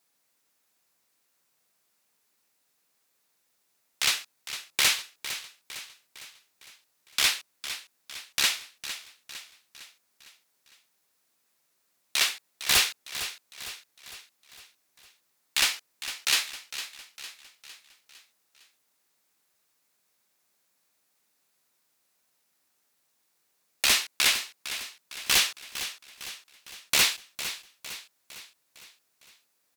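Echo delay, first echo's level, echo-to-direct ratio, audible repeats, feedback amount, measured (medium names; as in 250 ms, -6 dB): 456 ms, -12.0 dB, -10.5 dB, 4, 51%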